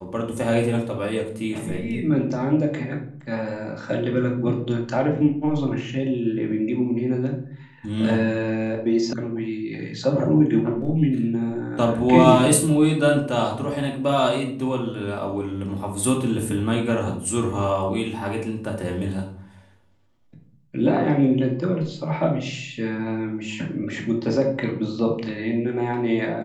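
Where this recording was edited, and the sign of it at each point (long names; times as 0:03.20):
0:09.13: cut off before it has died away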